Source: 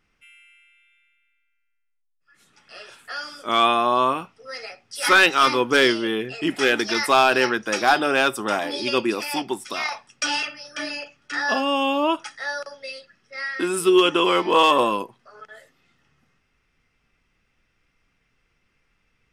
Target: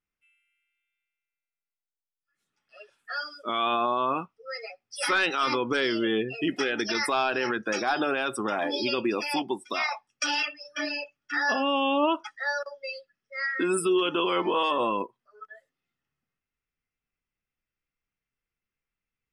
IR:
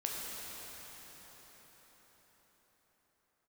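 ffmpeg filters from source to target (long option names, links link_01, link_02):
-af "afftdn=noise_reduction=22:noise_floor=-32,alimiter=limit=-17dB:level=0:latency=1:release=60"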